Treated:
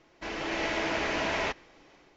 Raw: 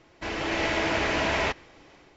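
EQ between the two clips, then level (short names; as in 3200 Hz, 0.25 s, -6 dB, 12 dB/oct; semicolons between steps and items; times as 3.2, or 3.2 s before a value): synth low-pass 6800 Hz, resonance Q 2.5; air absorption 110 m; bell 87 Hz -9 dB 0.97 oct; -3.5 dB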